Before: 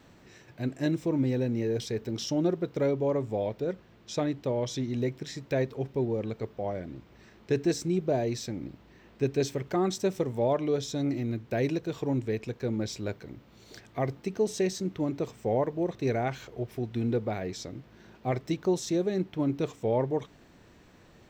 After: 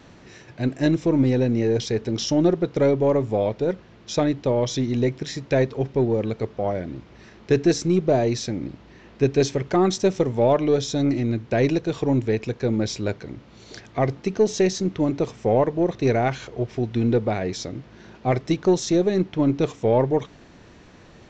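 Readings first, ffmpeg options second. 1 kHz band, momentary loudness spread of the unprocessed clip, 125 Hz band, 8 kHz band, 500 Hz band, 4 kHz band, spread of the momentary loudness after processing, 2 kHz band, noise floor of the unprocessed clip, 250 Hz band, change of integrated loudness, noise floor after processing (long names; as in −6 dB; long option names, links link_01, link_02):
+8.5 dB, 10 LU, +8.0 dB, +7.5 dB, +8.0 dB, +8.0 dB, 10 LU, +8.0 dB, −57 dBFS, +8.0 dB, +8.0 dB, −49 dBFS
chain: -af "aeval=exprs='0.168*(cos(1*acos(clip(val(0)/0.168,-1,1)))-cos(1*PI/2))+0.00335*(cos(6*acos(clip(val(0)/0.168,-1,1)))-cos(6*PI/2))':channel_layout=same,aresample=16000,aresample=44100,volume=8dB"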